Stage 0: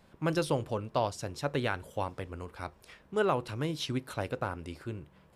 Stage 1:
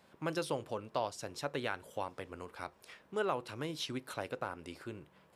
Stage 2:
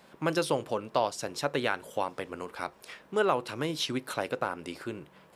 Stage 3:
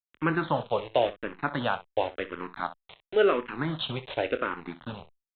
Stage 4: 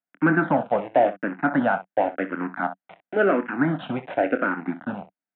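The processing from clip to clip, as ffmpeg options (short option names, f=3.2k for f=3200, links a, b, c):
-filter_complex "[0:a]highpass=f=300:p=1,asplit=2[a][b];[b]acompressor=threshold=-39dB:ratio=6,volume=0dB[c];[a][c]amix=inputs=2:normalize=0,volume=-6.5dB"
-af "equalizer=f=90:t=o:w=0.56:g=-10,volume=8dB"
-filter_complex "[0:a]aresample=8000,aeval=exprs='val(0)*gte(abs(val(0)),0.0133)':c=same,aresample=44100,aecho=1:1:25|63:0.237|0.178,asplit=2[a][b];[b]afreqshift=-0.93[c];[a][c]amix=inputs=2:normalize=1,volume=5.5dB"
-filter_complex "[0:a]acrossover=split=380[a][b];[b]asoftclip=type=tanh:threshold=-22.5dB[c];[a][c]amix=inputs=2:normalize=0,highpass=190,equalizer=f=190:t=q:w=4:g=9,equalizer=f=280:t=q:w=4:g=9,equalizer=f=420:t=q:w=4:g=-7,equalizer=f=710:t=q:w=4:g=8,equalizer=f=1.1k:t=q:w=4:g=-6,equalizer=f=1.5k:t=q:w=4:g=6,lowpass=f=2.1k:w=0.5412,lowpass=f=2.1k:w=1.3066,volume=6dB"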